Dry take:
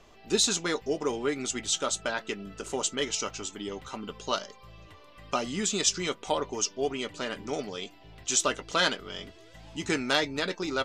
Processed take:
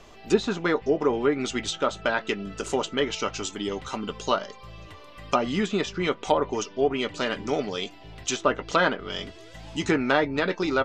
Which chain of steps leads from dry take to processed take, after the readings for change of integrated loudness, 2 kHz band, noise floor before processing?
+3.0 dB, +4.0 dB, −54 dBFS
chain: treble cut that deepens with the level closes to 1,600 Hz, closed at −24 dBFS
level +6.5 dB

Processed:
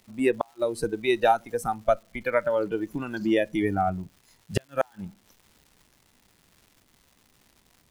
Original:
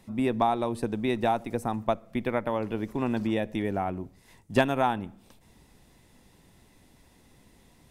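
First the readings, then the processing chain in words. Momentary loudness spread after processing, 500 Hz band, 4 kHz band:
10 LU, +3.5 dB, +1.0 dB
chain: noise reduction from a noise print of the clip's start 16 dB
gate with flip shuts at −16 dBFS, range −40 dB
surface crackle 390 per second −54 dBFS
level +7.5 dB

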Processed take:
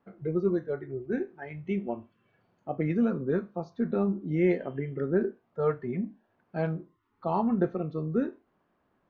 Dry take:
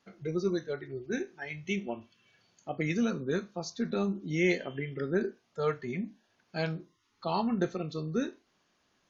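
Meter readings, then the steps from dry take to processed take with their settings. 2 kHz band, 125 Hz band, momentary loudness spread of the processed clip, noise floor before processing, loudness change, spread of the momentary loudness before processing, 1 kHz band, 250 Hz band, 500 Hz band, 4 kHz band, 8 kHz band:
−5.5 dB, +3.5 dB, 11 LU, −73 dBFS, +3.0 dB, 11 LU, +2.0 dB, +3.5 dB, +3.5 dB, below −15 dB, can't be measured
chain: low-pass filter 1,200 Hz 12 dB per octave
level +3.5 dB

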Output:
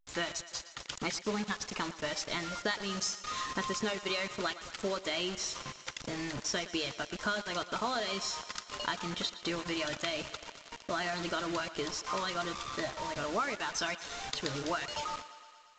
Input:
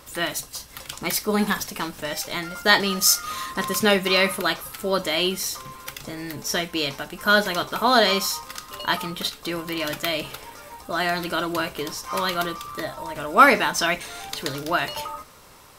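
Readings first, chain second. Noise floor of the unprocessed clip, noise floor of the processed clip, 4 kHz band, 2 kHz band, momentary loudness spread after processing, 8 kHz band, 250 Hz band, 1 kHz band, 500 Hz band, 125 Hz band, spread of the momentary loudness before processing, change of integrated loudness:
−46 dBFS, −54 dBFS, −11.0 dB, −13.0 dB, 6 LU, −11.5 dB, −11.0 dB, −13.0 dB, −12.0 dB, −10.0 dB, 16 LU, −12.5 dB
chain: downward compressor 10 to 1, threshold −26 dBFS, peak gain reduction 18 dB
reverb reduction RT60 0.53 s
bit reduction 6 bits
on a send: feedback echo with a high-pass in the loop 116 ms, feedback 72%, high-pass 280 Hz, level −15 dB
on the sum: level −4 dB
A-law companding 128 kbit/s 16,000 Hz

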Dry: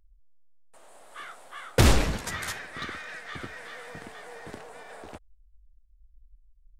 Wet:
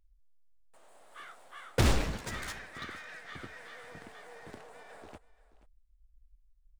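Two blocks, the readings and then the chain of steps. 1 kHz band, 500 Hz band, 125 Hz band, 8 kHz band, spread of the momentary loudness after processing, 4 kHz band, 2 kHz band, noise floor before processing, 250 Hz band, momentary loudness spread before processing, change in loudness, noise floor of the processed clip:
−6.5 dB, −6.5 dB, −6.5 dB, −8.0 dB, 23 LU, −7.0 dB, −6.5 dB, −59 dBFS, −6.5 dB, 23 LU, −6.5 dB, −66 dBFS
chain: running median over 3 samples
single-tap delay 480 ms −18.5 dB
level −6.5 dB

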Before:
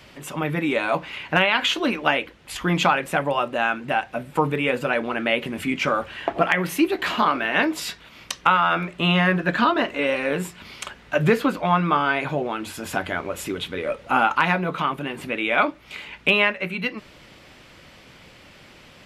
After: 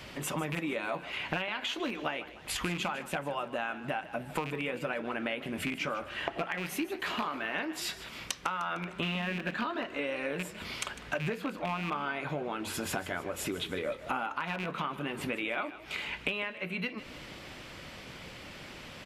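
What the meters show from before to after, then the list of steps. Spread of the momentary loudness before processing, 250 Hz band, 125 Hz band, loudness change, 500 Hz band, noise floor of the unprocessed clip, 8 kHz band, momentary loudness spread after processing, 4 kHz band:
10 LU, −12.0 dB, −12.0 dB, −12.5 dB, −12.0 dB, −49 dBFS, −4.5 dB, 7 LU, −10.5 dB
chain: loose part that buzzes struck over −26 dBFS, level −14 dBFS
downward compressor 8 to 1, threshold −33 dBFS, peak gain reduction 20 dB
echo with shifted repeats 152 ms, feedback 51%, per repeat +31 Hz, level −15 dB
level +1.5 dB

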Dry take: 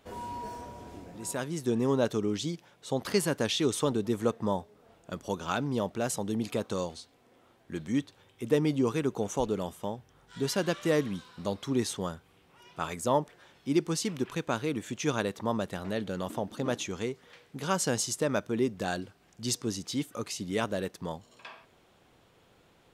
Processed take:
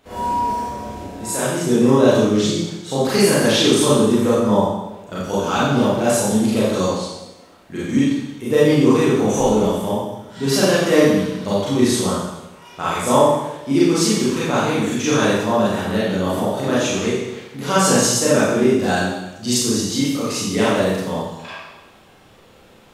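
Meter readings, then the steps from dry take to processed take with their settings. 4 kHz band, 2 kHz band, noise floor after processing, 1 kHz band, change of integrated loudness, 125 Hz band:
+14.0 dB, +14.0 dB, −48 dBFS, +14.5 dB, +14.0 dB, +12.5 dB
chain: four-comb reverb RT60 1 s, combs from 29 ms, DRR −9.5 dB
level +4 dB

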